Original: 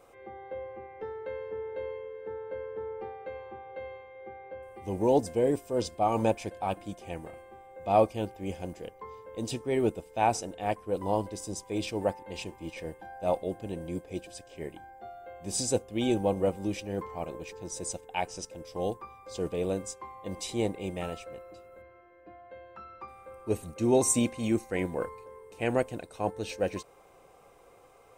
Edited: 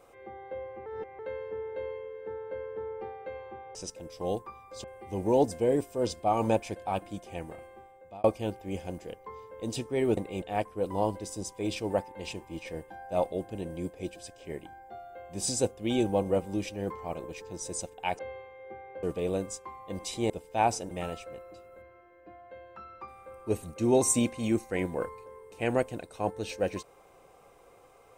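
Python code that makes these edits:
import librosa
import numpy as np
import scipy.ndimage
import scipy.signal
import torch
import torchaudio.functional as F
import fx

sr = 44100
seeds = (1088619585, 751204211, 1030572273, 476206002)

y = fx.edit(x, sr, fx.reverse_span(start_s=0.86, length_s=0.33),
    fx.swap(start_s=3.75, length_s=0.84, other_s=18.3, other_length_s=1.09),
    fx.fade_out_span(start_s=7.5, length_s=0.49),
    fx.swap(start_s=9.92, length_s=0.61, other_s=20.66, other_length_s=0.25), tone=tone)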